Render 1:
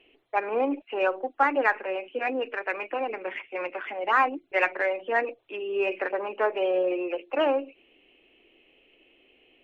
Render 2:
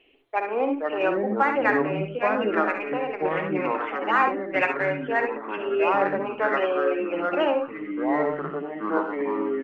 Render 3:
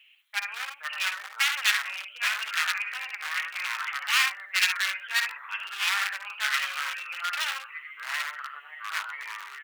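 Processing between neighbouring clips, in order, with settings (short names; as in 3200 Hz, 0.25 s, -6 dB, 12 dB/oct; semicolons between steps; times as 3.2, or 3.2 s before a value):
early reflections 53 ms -11.5 dB, 68 ms -7.5 dB; echoes that change speed 0.358 s, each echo -5 st, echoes 2
one-sided fold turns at -22 dBFS; HPF 1300 Hz 24 dB/oct; tilt +3.5 dB/oct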